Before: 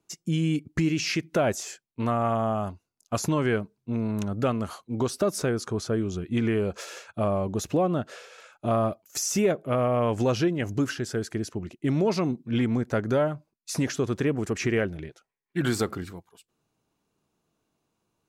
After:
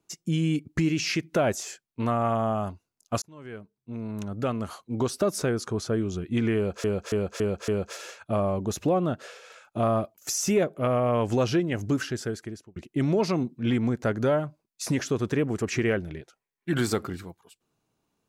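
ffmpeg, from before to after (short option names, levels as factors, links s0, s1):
-filter_complex "[0:a]asplit=7[s0][s1][s2][s3][s4][s5][s6];[s0]atrim=end=3.22,asetpts=PTS-STARTPTS,afade=t=out:st=3.216:d=0.004:c=hsin[s7];[s1]atrim=start=3.22:end=6.842,asetpts=PTS-STARTPTS,afade=t=in:d=1.71[s8];[s2]atrim=start=6.558:end=6.842[s9];[s3]atrim=start=6.558:end=6.842[s10];[s4]atrim=start=6.558:end=6.842[s11];[s5]atrim=start=6.558:end=11.64,asetpts=PTS-STARTPTS,afade=t=out:st=4.492:d=0.59[s12];[s6]atrim=start=11.64,asetpts=PTS-STARTPTS,afade=t=in:d=0.004:c=hsin[s13];[s7][s8]concat=n=2:v=0:a=1[s14];[s14][s9]acrossfade=d=0.004:c1=hsin:c2=hsin[s15];[s15][s10]acrossfade=d=0.004:c1=hsin:c2=hsin[s16];[s16][s11]acrossfade=d=0.004:c1=hsin:c2=hsin[s17];[s12][s13]concat=n=2:v=0:a=1[s18];[s17][s18]acrossfade=d=0.004:c1=hsin:c2=hsin"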